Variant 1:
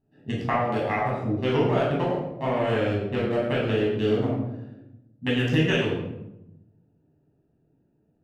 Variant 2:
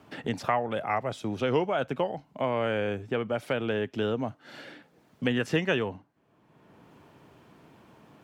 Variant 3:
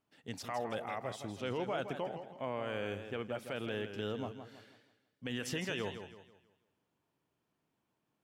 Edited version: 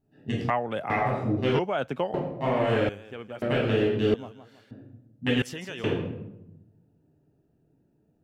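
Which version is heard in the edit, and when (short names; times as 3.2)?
1
0.5–0.9 from 2
1.59–2.14 from 2
2.89–3.42 from 3
4.14–4.71 from 3
5.42–5.84 from 3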